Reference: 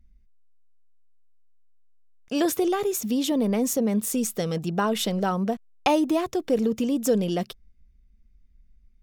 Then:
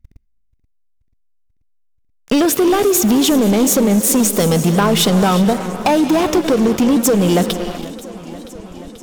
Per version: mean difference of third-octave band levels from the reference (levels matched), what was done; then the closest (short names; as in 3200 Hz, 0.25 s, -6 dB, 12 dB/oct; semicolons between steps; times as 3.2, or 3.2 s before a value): 8.0 dB: compressor 6:1, threshold -32 dBFS, peak gain reduction 14 dB; non-linear reverb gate 0.4 s rising, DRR 11 dB; sample leveller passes 5; warbling echo 0.484 s, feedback 75%, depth 114 cents, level -18.5 dB; gain +4.5 dB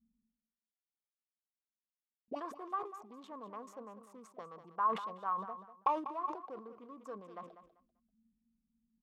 11.5 dB: Wiener smoothing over 25 samples; auto-wah 210–1100 Hz, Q 19, up, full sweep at -24.5 dBFS; feedback echo 0.195 s, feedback 21%, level -12.5 dB; sustainer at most 110 dB/s; gain +7 dB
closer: first